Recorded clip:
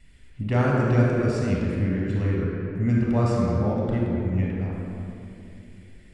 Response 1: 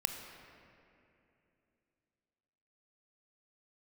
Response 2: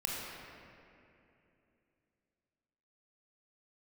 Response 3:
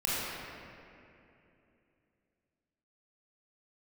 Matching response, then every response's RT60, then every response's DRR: 2; 2.8 s, 2.8 s, 2.8 s; 5.5 dB, -3.5 dB, -8.5 dB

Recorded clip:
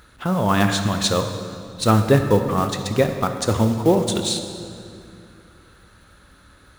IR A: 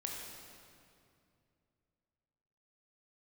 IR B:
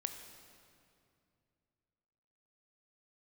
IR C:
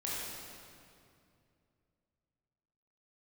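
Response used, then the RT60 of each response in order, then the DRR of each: B; 2.5 s, 2.5 s, 2.5 s; -1.5 dB, 6.5 dB, -7.0 dB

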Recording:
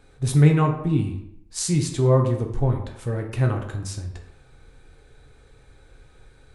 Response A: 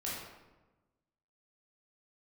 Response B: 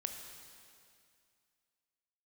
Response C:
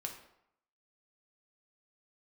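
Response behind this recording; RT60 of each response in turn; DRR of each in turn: C; 1.1 s, 2.3 s, 0.75 s; -7.0 dB, 4.0 dB, 2.0 dB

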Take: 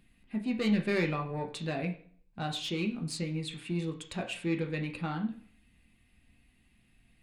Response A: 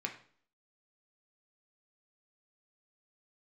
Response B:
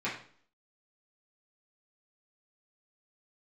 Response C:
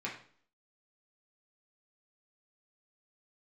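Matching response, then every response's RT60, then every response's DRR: A; 0.50 s, 0.50 s, 0.50 s; 2.0 dB, -9.0 dB, -4.5 dB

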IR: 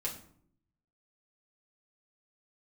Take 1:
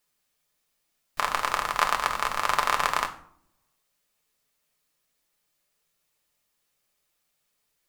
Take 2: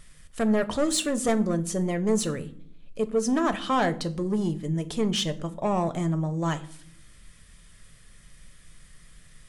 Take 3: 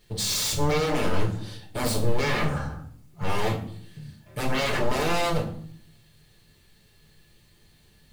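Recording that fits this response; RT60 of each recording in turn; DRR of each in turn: 3; 0.60 s, 0.65 s, 0.60 s; 2.5 dB, 8.5 dB, -5.0 dB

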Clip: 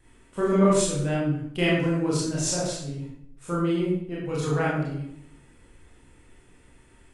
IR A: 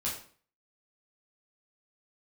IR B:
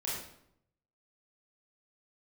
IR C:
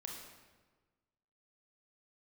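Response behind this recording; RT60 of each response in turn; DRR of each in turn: B; 0.45 s, 0.75 s, 1.4 s; -6.0 dB, -7.0 dB, -0.5 dB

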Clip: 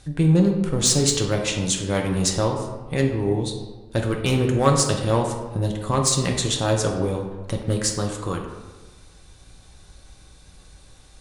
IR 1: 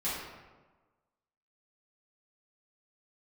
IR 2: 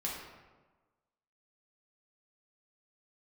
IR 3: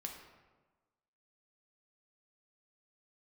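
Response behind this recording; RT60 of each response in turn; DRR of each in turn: 3; 1.3 s, 1.3 s, 1.3 s; -12.0 dB, -5.0 dB, 1.0 dB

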